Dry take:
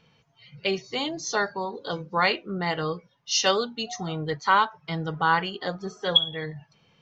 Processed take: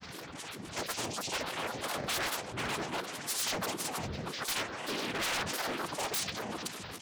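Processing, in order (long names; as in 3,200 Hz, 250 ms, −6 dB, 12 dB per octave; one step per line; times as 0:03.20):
converter with a step at zero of −29 dBFS
cochlear-implant simulation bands 4
repeating echo 436 ms, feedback 36%, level −13 dB
granular cloud, pitch spread up and down by 12 semitones
wave folding −21.5 dBFS
low-shelf EQ 500 Hz −5 dB
level −5.5 dB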